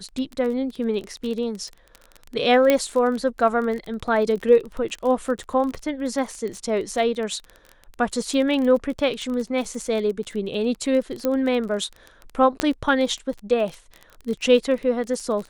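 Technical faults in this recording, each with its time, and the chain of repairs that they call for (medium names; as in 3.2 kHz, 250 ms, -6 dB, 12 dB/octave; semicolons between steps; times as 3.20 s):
crackle 23 per s -28 dBFS
2.70 s: pop -5 dBFS
11.25 s: pop -10 dBFS
12.60 s: pop -7 dBFS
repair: de-click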